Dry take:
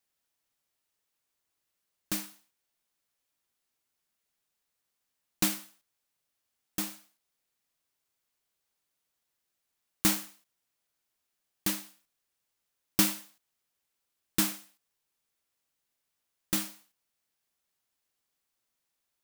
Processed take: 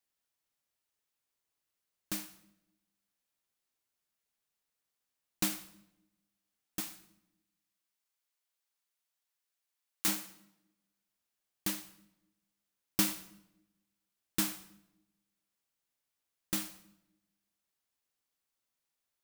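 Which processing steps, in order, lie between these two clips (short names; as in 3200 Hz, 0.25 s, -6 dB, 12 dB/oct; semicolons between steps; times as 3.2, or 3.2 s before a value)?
6.8–10.08 HPF 820 Hz 6 dB/oct; reverb RT60 0.90 s, pre-delay 61 ms, DRR 16.5 dB; gain -4.5 dB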